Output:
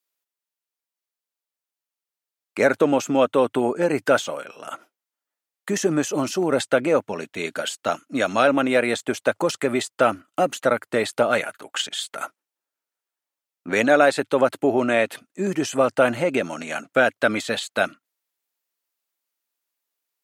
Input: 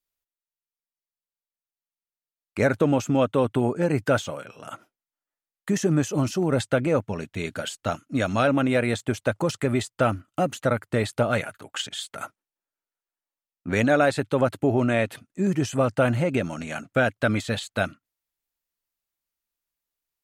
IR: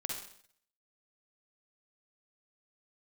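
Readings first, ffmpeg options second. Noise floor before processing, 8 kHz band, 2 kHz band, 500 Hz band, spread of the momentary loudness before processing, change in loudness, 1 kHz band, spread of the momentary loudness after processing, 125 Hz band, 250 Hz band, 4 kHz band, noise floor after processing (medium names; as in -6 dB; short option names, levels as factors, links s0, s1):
under -85 dBFS, +4.5 dB, +4.5 dB, +4.0 dB, 12 LU, +2.5 dB, +4.5 dB, 11 LU, -9.0 dB, 0.0 dB, +4.5 dB, under -85 dBFS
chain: -af "highpass=300,volume=1.68"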